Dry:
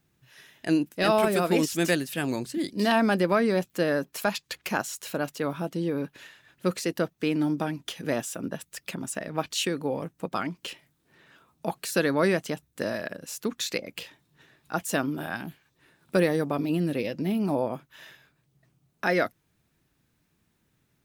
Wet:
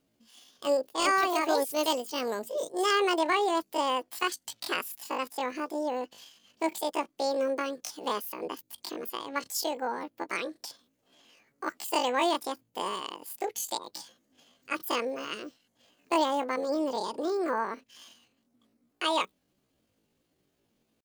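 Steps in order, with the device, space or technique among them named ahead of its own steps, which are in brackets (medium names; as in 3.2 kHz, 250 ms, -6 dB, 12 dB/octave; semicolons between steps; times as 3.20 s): chipmunk voice (pitch shift +10 st); trim -3 dB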